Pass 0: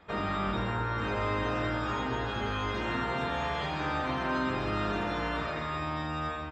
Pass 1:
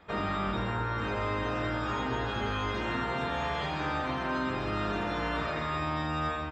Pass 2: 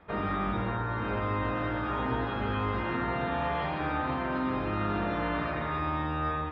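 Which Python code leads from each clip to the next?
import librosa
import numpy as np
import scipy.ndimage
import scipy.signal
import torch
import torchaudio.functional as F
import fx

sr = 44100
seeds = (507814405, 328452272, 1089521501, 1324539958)

y1 = fx.rider(x, sr, range_db=10, speed_s=0.5)
y2 = fx.air_absorb(y1, sr, metres=350.0)
y2 = y2 + 10.0 ** (-7.5 / 20.0) * np.pad(y2, (int(127 * sr / 1000.0), 0))[:len(y2)]
y2 = y2 * 10.0 ** (1.5 / 20.0)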